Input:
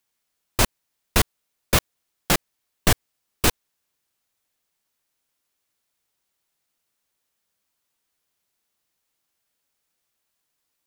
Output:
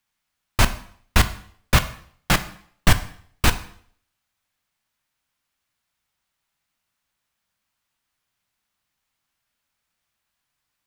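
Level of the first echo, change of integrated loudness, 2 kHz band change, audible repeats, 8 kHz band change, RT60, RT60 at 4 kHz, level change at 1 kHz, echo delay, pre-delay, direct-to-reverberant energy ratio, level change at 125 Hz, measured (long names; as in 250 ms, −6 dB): no echo audible, +1.0 dB, +3.5 dB, no echo audible, −2.5 dB, 0.60 s, 0.55 s, +2.5 dB, no echo audible, 5 ms, 10.0 dB, +5.0 dB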